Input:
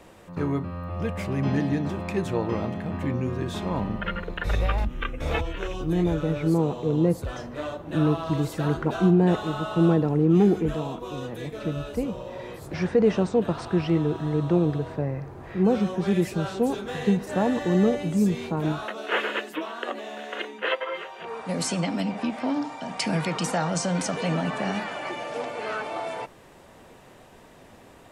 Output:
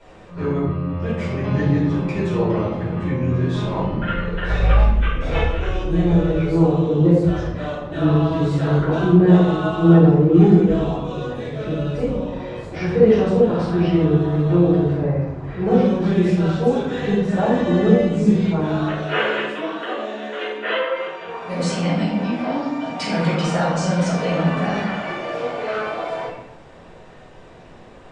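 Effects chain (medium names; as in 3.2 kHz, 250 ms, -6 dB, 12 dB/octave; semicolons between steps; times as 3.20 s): Bessel low-pass 5.6 kHz, order 8; simulated room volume 240 m³, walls mixed, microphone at 4.8 m; trim -7.5 dB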